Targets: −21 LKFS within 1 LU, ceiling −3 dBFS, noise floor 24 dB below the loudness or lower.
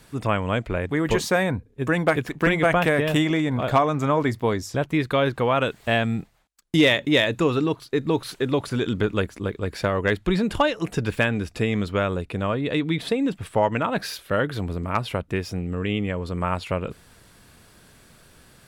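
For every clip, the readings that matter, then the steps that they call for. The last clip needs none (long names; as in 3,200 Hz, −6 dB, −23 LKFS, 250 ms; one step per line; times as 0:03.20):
integrated loudness −23.5 LKFS; sample peak −8.5 dBFS; target loudness −21.0 LKFS
→ level +2.5 dB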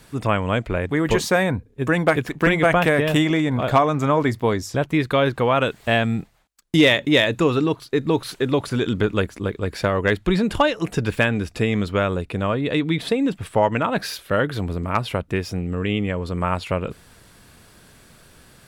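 integrated loudness −21.0 LKFS; sample peak −6.0 dBFS; background noise floor −52 dBFS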